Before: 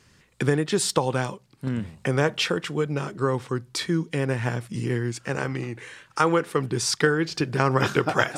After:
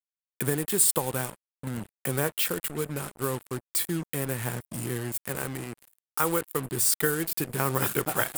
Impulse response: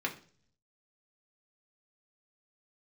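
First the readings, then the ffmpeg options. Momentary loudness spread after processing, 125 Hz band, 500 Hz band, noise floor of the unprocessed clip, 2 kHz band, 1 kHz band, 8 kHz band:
13 LU, −6.5 dB, −6.5 dB, −59 dBFS, −6.5 dB, −6.5 dB, +5.0 dB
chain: -af "acrusher=bits=4:mix=0:aa=0.5,aexciter=amount=6.7:drive=6.6:freq=8100,volume=-6.5dB"

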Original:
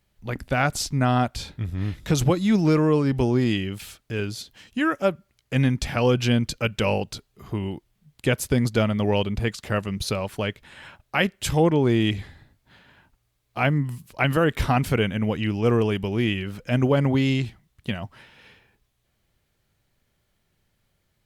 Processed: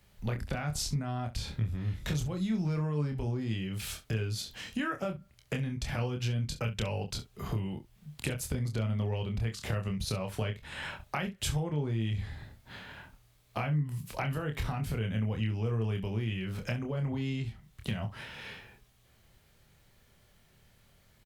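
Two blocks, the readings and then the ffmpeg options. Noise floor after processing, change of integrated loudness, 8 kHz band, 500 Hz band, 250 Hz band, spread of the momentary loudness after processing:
−64 dBFS, −10.5 dB, −6.5 dB, −14.5 dB, −12.0 dB, 9 LU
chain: -filter_complex "[0:a]equalizer=frequency=310:width=6.7:gain=-6.5,acrossover=split=150[link_01][link_02];[link_02]acompressor=threshold=-47dB:ratio=1.5[link_03];[link_01][link_03]amix=inputs=2:normalize=0,alimiter=limit=-21.5dB:level=0:latency=1:release=62,acompressor=threshold=-37dB:ratio=6,asplit=2[link_04][link_05];[link_05]aecho=0:1:27|67:0.562|0.178[link_06];[link_04][link_06]amix=inputs=2:normalize=0,volume=6dB"

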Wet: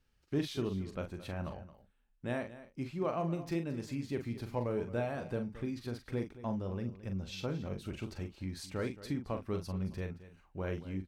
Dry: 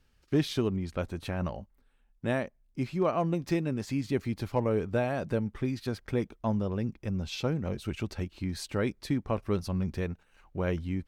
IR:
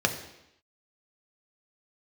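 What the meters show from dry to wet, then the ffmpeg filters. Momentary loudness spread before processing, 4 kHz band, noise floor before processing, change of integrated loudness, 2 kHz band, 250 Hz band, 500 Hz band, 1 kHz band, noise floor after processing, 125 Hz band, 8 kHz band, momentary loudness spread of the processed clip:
7 LU, −6.5 dB, −67 dBFS, −6.5 dB, −6.5 dB, −6.5 dB, −6.5 dB, −6.5 dB, −71 dBFS, −6.5 dB, −6.5 dB, 7 LU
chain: -filter_complex "[0:a]asplit=2[link_01][link_02];[link_02]adelay=42,volume=-7.5dB[link_03];[link_01][link_03]amix=inputs=2:normalize=0,asplit=2[link_04][link_05];[link_05]aecho=0:1:222:0.168[link_06];[link_04][link_06]amix=inputs=2:normalize=0,volume=-7.5dB"

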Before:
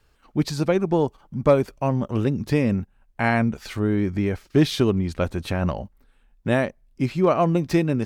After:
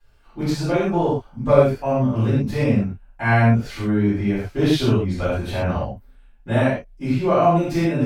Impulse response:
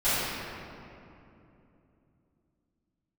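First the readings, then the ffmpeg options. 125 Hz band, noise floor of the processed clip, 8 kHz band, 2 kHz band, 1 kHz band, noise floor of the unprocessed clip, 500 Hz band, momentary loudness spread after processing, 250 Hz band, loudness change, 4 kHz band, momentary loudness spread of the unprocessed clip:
+4.0 dB, −50 dBFS, −0.5 dB, +3.0 dB, +4.0 dB, −61 dBFS, +2.5 dB, 9 LU, +2.0 dB, +2.5 dB, +1.5 dB, 8 LU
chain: -filter_complex "[1:a]atrim=start_sample=2205,atrim=end_sample=6174[link_01];[0:a][link_01]afir=irnorm=-1:irlink=0,volume=-10dB"

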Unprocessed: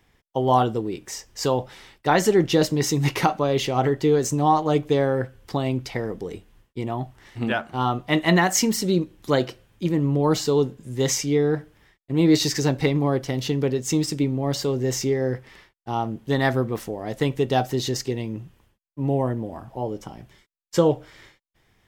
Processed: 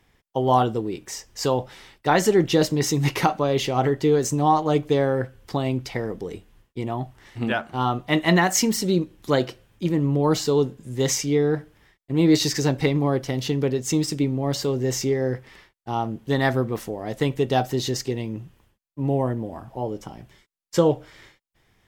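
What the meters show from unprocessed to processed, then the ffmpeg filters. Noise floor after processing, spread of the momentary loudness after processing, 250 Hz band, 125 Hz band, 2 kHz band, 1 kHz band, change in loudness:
−70 dBFS, 12 LU, 0.0 dB, 0.0 dB, 0.0 dB, 0.0 dB, 0.0 dB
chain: -ar 44100 -c:a ac3 -b:a 96k

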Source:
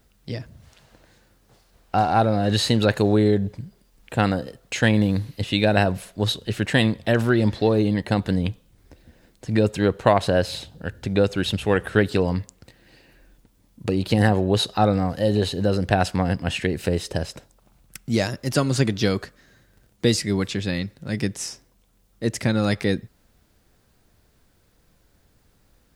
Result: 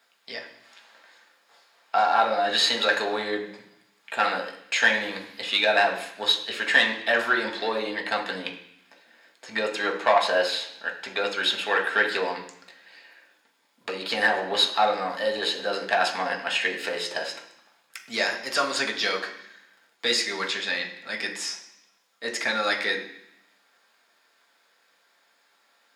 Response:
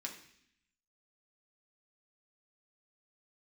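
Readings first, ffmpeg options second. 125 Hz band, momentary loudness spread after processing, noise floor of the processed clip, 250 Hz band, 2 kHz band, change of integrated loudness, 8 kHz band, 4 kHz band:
below −25 dB, 13 LU, −65 dBFS, −16.0 dB, +5.5 dB, −2.5 dB, −2.0 dB, +4.0 dB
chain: -filter_complex "[0:a]asplit=2[link_01][link_02];[link_02]highpass=frequency=720:poles=1,volume=13dB,asoftclip=type=tanh:threshold=-2dB[link_03];[link_01][link_03]amix=inputs=2:normalize=0,lowpass=frequency=3000:poles=1,volume=-6dB,highpass=610[link_04];[1:a]atrim=start_sample=2205,asetrate=41454,aresample=44100[link_05];[link_04][link_05]afir=irnorm=-1:irlink=0"

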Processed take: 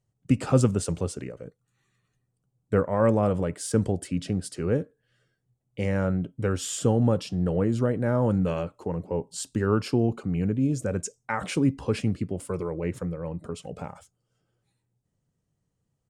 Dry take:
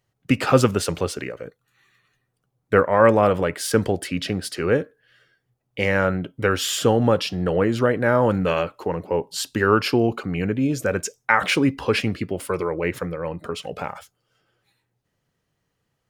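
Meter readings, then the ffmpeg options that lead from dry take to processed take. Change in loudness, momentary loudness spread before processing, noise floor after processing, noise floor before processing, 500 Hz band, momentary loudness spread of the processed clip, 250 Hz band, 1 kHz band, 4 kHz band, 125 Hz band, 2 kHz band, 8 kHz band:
−5.0 dB, 12 LU, −78 dBFS, −76 dBFS, −7.0 dB, 12 LU, −2.5 dB, −10.5 dB, −12.5 dB, 0.0 dB, −14.0 dB, −4.5 dB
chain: -af "firequalizer=gain_entry='entry(170,0);entry(350,-6);entry(1700,-15);entry(4400,-12);entry(8200,-1);entry(13000,-19)':delay=0.05:min_phase=1"

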